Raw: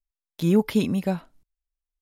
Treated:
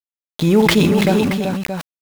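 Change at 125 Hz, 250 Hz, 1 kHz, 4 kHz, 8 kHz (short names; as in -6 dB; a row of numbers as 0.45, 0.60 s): +9.0, +8.0, +13.5, +16.0, +14.5 dB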